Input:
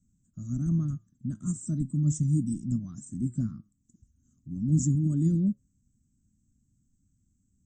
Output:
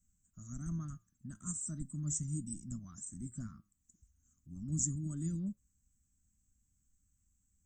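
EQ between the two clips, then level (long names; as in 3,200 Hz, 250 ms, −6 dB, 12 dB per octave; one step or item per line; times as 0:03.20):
low-shelf EQ 480 Hz −5.5 dB
dynamic equaliser 350 Hz, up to −4 dB, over −55 dBFS, Q 6.9
octave-band graphic EQ 125/250/500/4,000 Hz −11/−10/−11/−9 dB
+4.0 dB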